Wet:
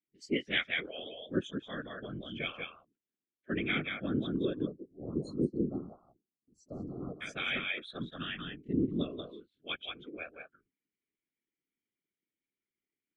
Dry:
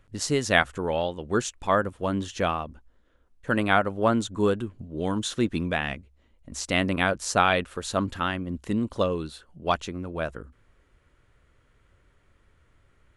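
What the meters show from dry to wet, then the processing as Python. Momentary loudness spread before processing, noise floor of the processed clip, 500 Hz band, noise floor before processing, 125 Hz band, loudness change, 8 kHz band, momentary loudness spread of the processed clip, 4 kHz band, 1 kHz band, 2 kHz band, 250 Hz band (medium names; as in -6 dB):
12 LU, under -85 dBFS, -12.5 dB, -64 dBFS, -10.0 dB, -9.5 dB, under -25 dB, 13 LU, -6.0 dB, -21.0 dB, -9.0 dB, -7.0 dB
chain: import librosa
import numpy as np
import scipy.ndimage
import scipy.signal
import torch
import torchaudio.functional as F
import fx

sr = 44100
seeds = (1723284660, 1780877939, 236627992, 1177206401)

p1 = x + fx.echo_single(x, sr, ms=184, db=-4.0, dry=0)
p2 = fx.noise_reduce_blind(p1, sr, reduce_db=26)
p3 = fx.rider(p2, sr, range_db=3, speed_s=0.5)
p4 = p2 + F.gain(torch.from_numpy(p3), 3.0).numpy()
p5 = fx.spec_erase(p4, sr, start_s=4.66, length_s=2.56, low_hz=1300.0, high_hz=4100.0)
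p6 = fx.vowel_filter(p5, sr, vowel='i')
p7 = fx.whisperise(p6, sr, seeds[0])
y = fx.low_shelf(p7, sr, hz=180.0, db=-7.5)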